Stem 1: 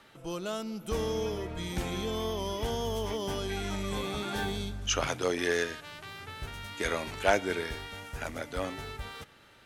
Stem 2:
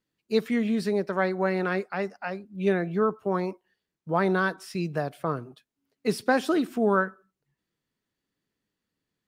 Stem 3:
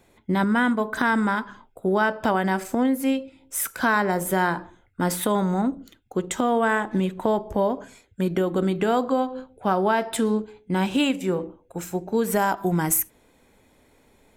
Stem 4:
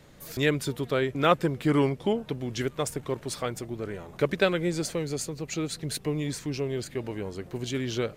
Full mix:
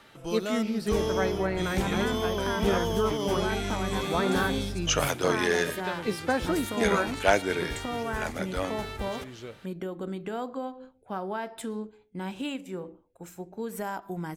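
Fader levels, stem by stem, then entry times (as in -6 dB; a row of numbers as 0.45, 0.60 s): +3.0, -4.0, -12.0, -13.0 dB; 0.00, 0.00, 1.45, 1.45 s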